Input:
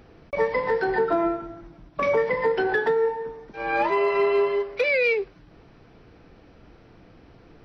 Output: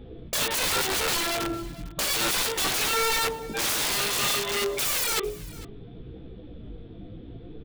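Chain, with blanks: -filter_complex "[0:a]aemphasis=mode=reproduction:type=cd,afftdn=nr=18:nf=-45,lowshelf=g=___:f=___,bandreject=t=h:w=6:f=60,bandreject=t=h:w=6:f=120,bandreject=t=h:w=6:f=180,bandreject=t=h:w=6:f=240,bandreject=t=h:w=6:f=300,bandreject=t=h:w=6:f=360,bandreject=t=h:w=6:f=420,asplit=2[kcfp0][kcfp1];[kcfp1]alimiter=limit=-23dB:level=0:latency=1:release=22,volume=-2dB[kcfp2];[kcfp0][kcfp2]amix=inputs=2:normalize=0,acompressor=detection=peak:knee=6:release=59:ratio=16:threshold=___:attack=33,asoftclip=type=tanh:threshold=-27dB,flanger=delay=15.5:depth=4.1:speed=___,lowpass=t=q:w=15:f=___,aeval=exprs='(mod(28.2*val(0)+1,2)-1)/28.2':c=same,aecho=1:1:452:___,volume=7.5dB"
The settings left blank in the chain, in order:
3.5, 240, -25dB, 0.64, 3500, 0.1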